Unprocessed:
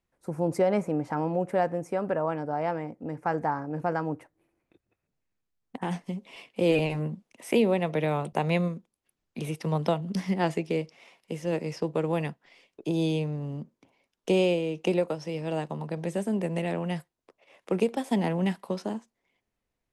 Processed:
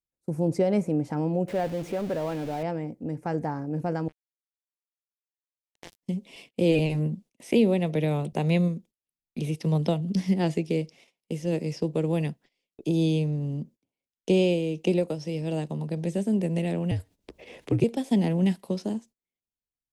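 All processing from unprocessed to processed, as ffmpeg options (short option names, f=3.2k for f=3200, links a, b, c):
-filter_complex "[0:a]asettb=1/sr,asplit=3[a][b][c];[a]atrim=end=1.484[d];[b]atrim=start=1.48:end=2.63,asetpts=PTS-STARTPTS,afade=t=in:d=0.004:c=qsin,afade=t=out:st=1.146:d=0.004:c=qsin,aeval=exprs='val(0)+0.5*0.0266*sgn(val(0))':c=same,acrossover=split=3200[e][f];[f]acompressor=threshold=-51dB:ratio=4:attack=1:release=60[g];[e][g]amix=inputs=2:normalize=0,lowshelf=f=350:g=-7[h];[c]atrim=start=2.626[i];[d][h]acrossfade=d=0.004:c1=hsin:c2=qsin[j];[j][i]acrossfade=d=0.004:c1=qsin:c2=hsin,asettb=1/sr,asplit=3[k][l][m];[k]atrim=end=4.084[n];[l]atrim=start=4.08:end=6.03,asetpts=PTS-STARTPTS,afade=t=in:d=0.004:c=qsin,afade=t=out:st=1.946:d=0.004:c=qsin,highpass=f=1.5k:p=1,acrusher=bits=4:mix=0:aa=0.5[o];[m]atrim=start=6.026[p];[n][o]acrossfade=d=0.004:c1=hsin:c2=qsin[q];[q][p]acrossfade=d=0.004:c1=qsin:c2=hsin,asettb=1/sr,asplit=3[r][s][t];[r]atrim=end=16.914[u];[s]atrim=start=16.91:end=17.84,asetpts=PTS-STARTPTS,afade=t=in:d=0.004:c=qsin,afade=t=out:st=0.926:d=0.004:c=qsin,highshelf=f=4.6k:g=-8.5,acompressor=mode=upward:threshold=-30dB:ratio=2.5:attack=3.2:release=140:knee=2.83:detection=peak,afreqshift=-63[v];[t]atrim=start=17.836[w];[u][v]acrossfade=d=0.004:c1=hsin:c2=qsin[x];[x][w]acrossfade=d=0.004:c1=qsin:c2=hsin,agate=range=-22dB:threshold=-51dB:ratio=16:detection=peak,acrossover=split=6200[y][z];[z]acompressor=threshold=-56dB:ratio=4:attack=1:release=60[aa];[y][aa]amix=inputs=2:normalize=0,equalizer=f=1.2k:t=o:w=2.1:g=-14,volume=5.5dB"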